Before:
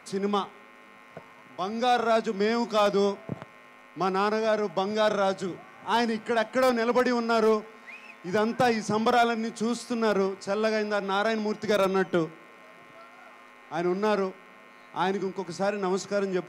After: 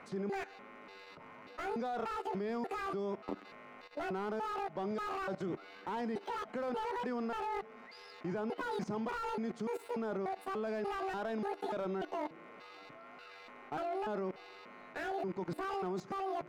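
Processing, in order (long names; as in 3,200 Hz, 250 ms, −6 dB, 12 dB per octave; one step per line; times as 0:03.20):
pitch shifter gated in a rhythm +11.5 semitones, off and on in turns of 293 ms
in parallel at +1.5 dB: brickwall limiter −22 dBFS, peak gain reduction 7.5 dB
on the sum: low-pass filter 1,400 Hz 6 dB per octave
output level in coarse steps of 17 dB
slew-rate limiting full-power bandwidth 24 Hz
level −2.5 dB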